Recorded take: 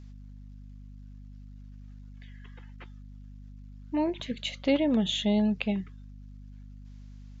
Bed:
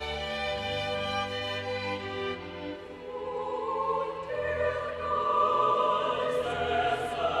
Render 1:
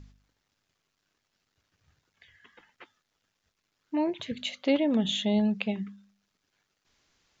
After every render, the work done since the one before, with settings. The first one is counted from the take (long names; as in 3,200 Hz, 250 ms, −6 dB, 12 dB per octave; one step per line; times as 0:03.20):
hum removal 50 Hz, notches 5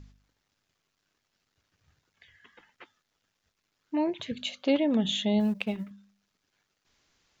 0:04.31–0:04.73: notch filter 2,000 Hz, Q 6.7
0:05.40–0:05.91: mu-law and A-law mismatch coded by A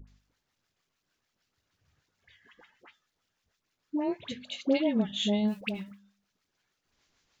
amplitude tremolo 6.6 Hz, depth 48%
all-pass dispersion highs, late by 76 ms, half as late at 1,000 Hz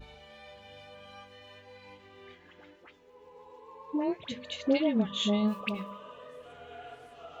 mix in bed −19 dB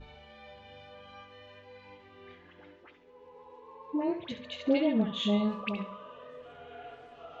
high-frequency loss of the air 130 metres
flutter between parallel walls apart 11.7 metres, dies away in 0.4 s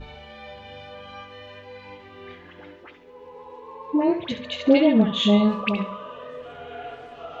level +10 dB